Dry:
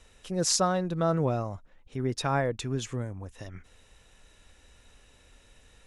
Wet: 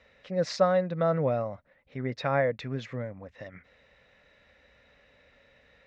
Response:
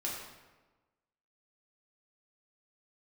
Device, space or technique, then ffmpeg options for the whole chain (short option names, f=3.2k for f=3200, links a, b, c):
guitar cabinet: -af "highpass=85,equalizer=f=94:t=q:w=4:g=-7,equalizer=f=350:t=q:w=4:g=-8,equalizer=f=560:t=q:w=4:g=9,equalizer=f=920:t=q:w=4:g=-3,equalizer=f=2k:t=q:w=4:g=9,equalizer=f=3.1k:t=q:w=4:g=-6,lowpass=f=4.1k:w=0.5412,lowpass=f=4.1k:w=1.3066,volume=-1dB"